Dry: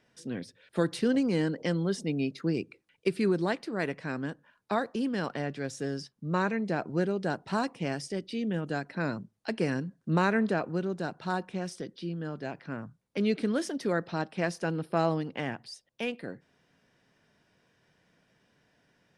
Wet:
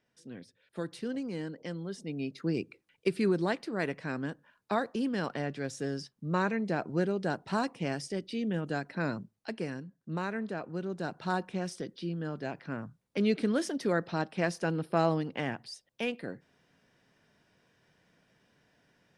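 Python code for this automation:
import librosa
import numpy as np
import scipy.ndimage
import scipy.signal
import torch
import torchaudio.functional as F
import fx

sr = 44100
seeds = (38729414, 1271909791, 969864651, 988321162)

y = fx.gain(x, sr, db=fx.line((1.9, -9.5), (2.58, -1.0), (9.21, -1.0), (9.78, -9.0), (10.49, -9.0), (11.18, 0.0)))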